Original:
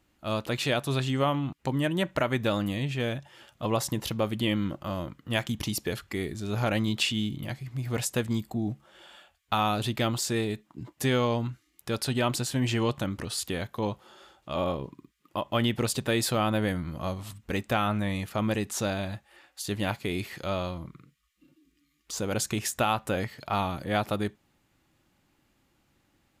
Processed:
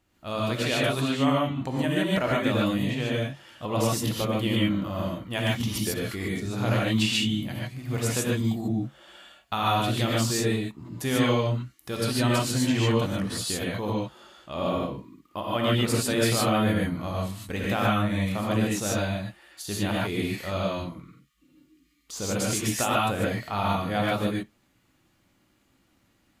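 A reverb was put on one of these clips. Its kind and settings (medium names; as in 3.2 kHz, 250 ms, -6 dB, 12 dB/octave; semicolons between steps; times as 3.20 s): gated-style reverb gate 170 ms rising, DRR -4.5 dB; trim -3 dB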